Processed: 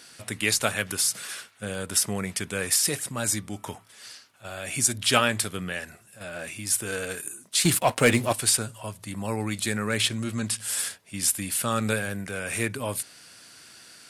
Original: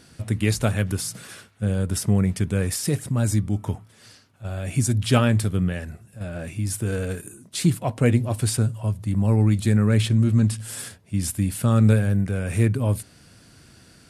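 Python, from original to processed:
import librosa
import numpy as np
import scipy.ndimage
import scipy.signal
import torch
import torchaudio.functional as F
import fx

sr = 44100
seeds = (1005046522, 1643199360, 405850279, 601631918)

y = fx.highpass(x, sr, hz=1400.0, slope=6)
y = fx.leveller(y, sr, passes=2, at=(7.65, 8.33))
y = y * 10.0 ** (6.5 / 20.0)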